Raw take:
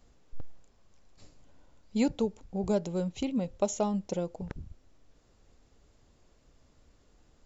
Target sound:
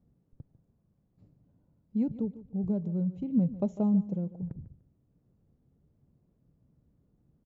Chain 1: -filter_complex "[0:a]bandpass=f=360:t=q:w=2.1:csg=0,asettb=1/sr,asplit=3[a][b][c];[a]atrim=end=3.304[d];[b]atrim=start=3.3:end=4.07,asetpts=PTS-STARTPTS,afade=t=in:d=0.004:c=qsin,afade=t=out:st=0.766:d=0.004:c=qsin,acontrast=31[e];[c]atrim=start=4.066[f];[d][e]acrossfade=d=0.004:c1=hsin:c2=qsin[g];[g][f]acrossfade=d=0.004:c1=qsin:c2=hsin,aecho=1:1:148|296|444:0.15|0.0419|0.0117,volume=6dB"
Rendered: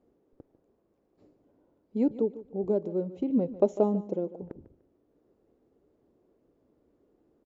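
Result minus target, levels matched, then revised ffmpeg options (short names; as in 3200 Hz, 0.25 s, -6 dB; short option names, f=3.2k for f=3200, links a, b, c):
500 Hz band +10.0 dB
-filter_complex "[0:a]bandpass=f=150:t=q:w=2.1:csg=0,asettb=1/sr,asplit=3[a][b][c];[a]atrim=end=3.304[d];[b]atrim=start=3.3:end=4.07,asetpts=PTS-STARTPTS,afade=t=in:d=0.004:c=qsin,afade=t=out:st=0.766:d=0.004:c=qsin,acontrast=31[e];[c]atrim=start=4.066[f];[d][e]acrossfade=d=0.004:c1=hsin:c2=qsin[g];[g][f]acrossfade=d=0.004:c1=qsin:c2=hsin,aecho=1:1:148|296|444:0.15|0.0419|0.0117,volume=6dB"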